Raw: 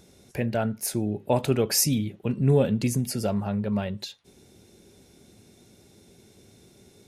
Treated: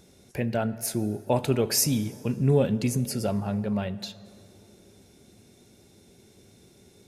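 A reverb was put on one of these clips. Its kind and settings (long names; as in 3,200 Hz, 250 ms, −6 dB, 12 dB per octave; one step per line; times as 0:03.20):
dense smooth reverb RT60 3 s, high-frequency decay 0.55×, DRR 15.5 dB
level −1 dB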